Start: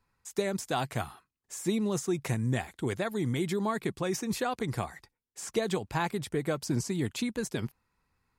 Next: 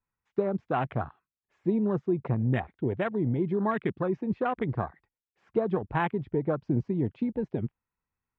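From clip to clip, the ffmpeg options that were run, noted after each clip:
ffmpeg -i in.wav -af "lowpass=frequency=2800:width=0.5412,lowpass=frequency=2800:width=1.3066,afwtdn=0.0141,volume=3dB" out.wav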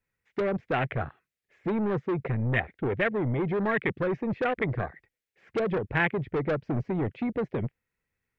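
ffmpeg -i in.wav -filter_complex "[0:a]equalizer=frequency=125:width_type=o:width=1:gain=3,equalizer=frequency=500:width_type=o:width=1:gain=8,equalizer=frequency=1000:width_type=o:width=1:gain=-9,equalizer=frequency=2000:width_type=o:width=1:gain=11,acrossover=split=1100[link_01][link_02];[link_01]asoftclip=type=tanh:threshold=-27dB[link_03];[link_03][link_02]amix=inputs=2:normalize=0,volume=2.5dB" out.wav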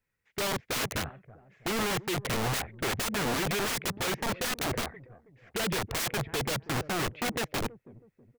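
ffmpeg -i in.wav -filter_complex "[0:a]asplit=2[link_01][link_02];[link_02]adelay=323,lowpass=frequency=930:poles=1,volume=-21.5dB,asplit=2[link_03][link_04];[link_04]adelay=323,lowpass=frequency=930:poles=1,volume=0.41,asplit=2[link_05][link_06];[link_06]adelay=323,lowpass=frequency=930:poles=1,volume=0.41[link_07];[link_01][link_03][link_05][link_07]amix=inputs=4:normalize=0,aeval=exprs='(mod(21.1*val(0)+1,2)-1)/21.1':channel_layout=same" out.wav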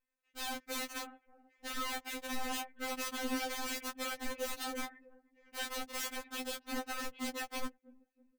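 ffmpeg -i in.wav -af "afftfilt=real='re*3.46*eq(mod(b,12),0)':imag='im*3.46*eq(mod(b,12),0)':win_size=2048:overlap=0.75,volume=-5.5dB" out.wav

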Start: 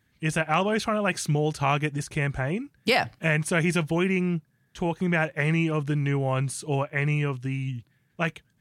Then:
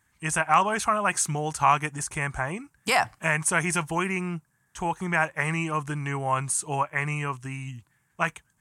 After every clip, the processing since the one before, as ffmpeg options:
ffmpeg -i in.wav -af "equalizer=frequency=125:width_type=o:width=1:gain=-5,equalizer=frequency=250:width_type=o:width=1:gain=-5,equalizer=frequency=500:width_type=o:width=1:gain=-7,equalizer=frequency=1000:width_type=o:width=1:gain=10,equalizer=frequency=4000:width_type=o:width=1:gain=-8,equalizer=frequency=8000:width_type=o:width=1:gain=12" out.wav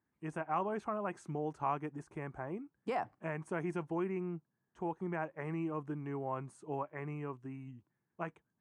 ffmpeg -i in.wav -af "bandpass=frequency=340:width_type=q:width=1.4:csg=0,volume=-3.5dB" out.wav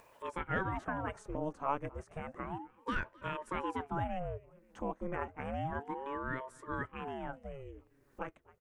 ffmpeg -i in.wav -af "acompressor=mode=upward:threshold=-44dB:ratio=2.5,aecho=1:1:262|524|786:0.0631|0.0341|0.0184,aeval=exprs='val(0)*sin(2*PI*460*n/s+460*0.7/0.31*sin(2*PI*0.31*n/s))':channel_layout=same,volume=3dB" out.wav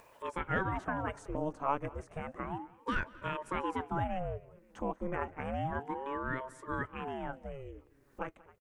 ffmpeg -i in.wav -af "aecho=1:1:186:0.075,volume=2dB" out.wav

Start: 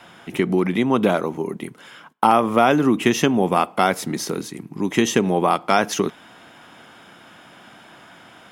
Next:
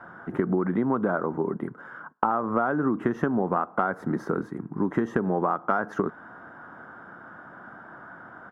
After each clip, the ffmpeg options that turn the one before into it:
ffmpeg -i in.wav -af "firequalizer=gain_entry='entry(790,0);entry(1500,6);entry(2400,-24);entry(4400,-27);entry(9200,-29)':delay=0.05:min_phase=1,acompressor=threshold=-20dB:ratio=12" out.wav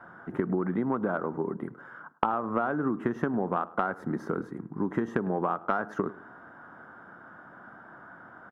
ffmpeg -i in.wav -filter_complex "[0:a]aeval=exprs='0.562*(cos(1*acos(clip(val(0)/0.562,-1,1)))-cos(1*PI/2))+0.0708*(cos(3*acos(clip(val(0)/0.562,-1,1)))-cos(3*PI/2))':channel_layout=same,asplit=2[link_01][link_02];[link_02]adelay=104,lowpass=frequency=1400:poles=1,volume=-18dB,asplit=2[link_03][link_04];[link_04]adelay=104,lowpass=frequency=1400:poles=1,volume=0.31,asplit=2[link_05][link_06];[link_06]adelay=104,lowpass=frequency=1400:poles=1,volume=0.31[link_07];[link_01][link_03][link_05][link_07]amix=inputs=4:normalize=0" out.wav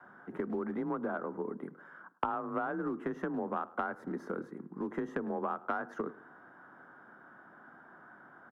ffmpeg -i in.wav -filter_complex "[0:a]afreqshift=29,acrossover=split=300[link_01][link_02];[link_01]asoftclip=type=hard:threshold=-30dB[link_03];[link_03][link_02]amix=inputs=2:normalize=0,volume=-6.5dB" out.wav

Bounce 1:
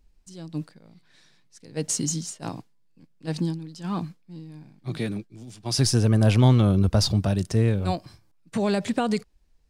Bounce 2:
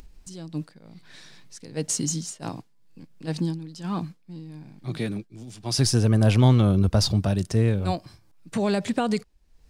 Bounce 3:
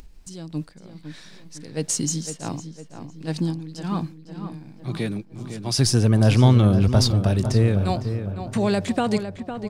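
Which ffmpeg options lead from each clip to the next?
ffmpeg -i in.wav -af "acompressor=mode=upward:threshold=-35dB:ratio=2.5" out.wav
ffmpeg -i in.wav -filter_complex "[0:a]asplit=2[link_01][link_02];[link_02]adelay=506,lowpass=frequency=2400:poles=1,volume=-9dB,asplit=2[link_03][link_04];[link_04]adelay=506,lowpass=frequency=2400:poles=1,volume=0.52,asplit=2[link_05][link_06];[link_06]adelay=506,lowpass=frequency=2400:poles=1,volume=0.52,asplit=2[link_07][link_08];[link_08]adelay=506,lowpass=frequency=2400:poles=1,volume=0.52,asplit=2[link_09][link_10];[link_10]adelay=506,lowpass=frequency=2400:poles=1,volume=0.52,asplit=2[link_11][link_12];[link_12]adelay=506,lowpass=frequency=2400:poles=1,volume=0.52[link_13];[link_01][link_03][link_05][link_07][link_09][link_11][link_13]amix=inputs=7:normalize=0,volume=2dB" out.wav

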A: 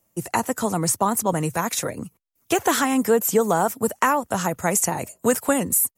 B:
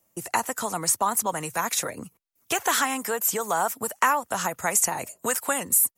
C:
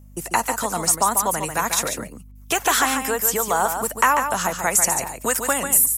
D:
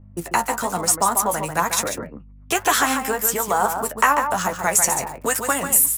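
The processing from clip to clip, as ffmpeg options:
ffmpeg -i in.wav -filter_complex "[0:a]lowshelf=frequency=190:gain=-6.5,acrossover=split=730|1700[link_01][link_02][link_03];[link_01]acompressor=threshold=-33dB:ratio=6[link_04];[link_04][link_02][link_03]amix=inputs=3:normalize=0" out.wav
ffmpeg -i in.wav -af "aeval=exprs='val(0)+0.00398*(sin(2*PI*50*n/s)+sin(2*PI*2*50*n/s)/2+sin(2*PI*3*50*n/s)/3+sin(2*PI*4*50*n/s)/4+sin(2*PI*5*50*n/s)/5)':channel_layout=same,aecho=1:1:143:0.447,volume=4dB" out.wav
ffmpeg -i in.wav -filter_complex "[0:a]flanger=delay=9.7:depth=4.6:regen=40:speed=1.1:shape=sinusoidal,acrossover=split=2100[link_01][link_02];[link_02]aeval=exprs='sgn(val(0))*max(abs(val(0))-0.01,0)':channel_layout=same[link_03];[link_01][link_03]amix=inputs=2:normalize=0,volume=5dB" out.wav

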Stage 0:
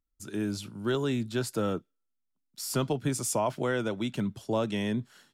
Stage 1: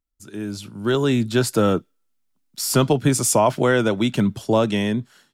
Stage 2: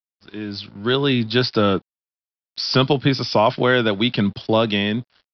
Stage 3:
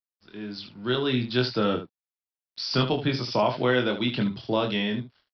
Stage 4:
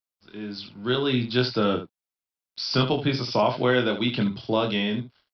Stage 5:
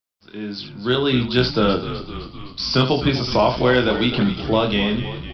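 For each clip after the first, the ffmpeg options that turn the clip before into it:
ffmpeg -i in.wav -af "dynaudnorm=framelen=340:gausssize=5:maxgain=11.5dB" out.wav
ffmpeg -i in.wav -af "highshelf=frequency=2500:gain=12,aresample=11025,aeval=exprs='sgn(val(0))*max(abs(val(0))-0.00501,0)':channel_layout=same,aresample=44100" out.wav
ffmpeg -i in.wav -af "aecho=1:1:24|75:0.596|0.299,volume=-8.5dB" out.wav
ffmpeg -i in.wav -af "bandreject=frequency=1800:width=14,volume=1.5dB" out.wav
ffmpeg -i in.wav -filter_complex "[0:a]acontrast=29,asplit=9[link_01][link_02][link_03][link_04][link_05][link_06][link_07][link_08][link_09];[link_02]adelay=256,afreqshift=-65,volume=-11.5dB[link_10];[link_03]adelay=512,afreqshift=-130,volume=-15.4dB[link_11];[link_04]adelay=768,afreqshift=-195,volume=-19.3dB[link_12];[link_05]adelay=1024,afreqshift=-260,volume=-23.1dB[link_13];[link_06]adelay=1280,afreqshift=-325,volume=-27dB[link_14];[link_07]adelay=1536,afreqshift=-390,volume=-30.9dB[link_15];[link_08]adelay=1792,afreqshift=-455,volume=-34.8dB[link_16];[link_09]adelay=2048,afreqshift=-520,volume=-38.6dB[link_17];[link_01][link_10][link_11][link_12][link_13][link_14][link_15][link_16][link_17]amix=inputs=9:normalize=0" out.wav

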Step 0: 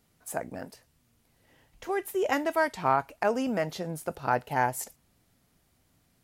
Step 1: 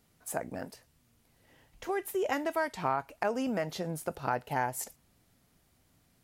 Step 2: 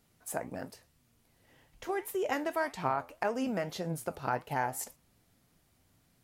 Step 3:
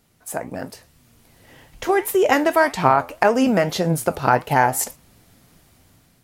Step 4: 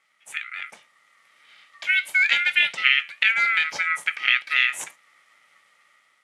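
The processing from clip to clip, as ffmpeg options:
ffmpeg -i in.wav -af "acompressor=threshold=-30dB:ratio=2" out.wav
ffmpeg -i in.wav -af "flanger=delay=5.5:depth=6.5:regen=80:speed=1.8:shape=triangular,volume=3.5dB" out.wav
ffmpeg -i in.wav -af "dynaudnorm=framelen=310:gausssize=5:maxgain=8dB,volume=7.5dB" out.wav
ffmpeg -i in.wav -af "afftfilt=real='real(if(lt(b,272),68*(eq(floor(b/68),0)*3+eq(floor(b/68),1)*0+eq(floor(b/68),2)*1+eq(floor(b/68),3)*2)+mod(b,68),b),0)':imag='imag(if(lt(b,272),68*(eq(floor(b/68),0)*3+eq(floor(b/68),1)*0+eq(floor(b/68),2)*1+eq(floor(b/68),3)*2)+mod(b,68),b),0)':win_size=2048:overlap=0.75,aeval=exprs='val(0)*sin(2*PI*340*n/s)':channel_layout=same,highpass=150,equalizer=frequency=170:width_type=q:width=4:gain=3,equalizer=frequency=580:width_type=q:width=4:gain=8,equalizer=frequency=860:width_type=q:width=4:gain=9,equalizer=frequency=2200:width_type=q:width=4:gain=8,equalizer=frequency=3200:width_type=q:width=4:gain=6,lowpass=frequency=10000:width=0.5412,lowpass=frequency=10000:width=1.3066,volume=-6dB" out.wav

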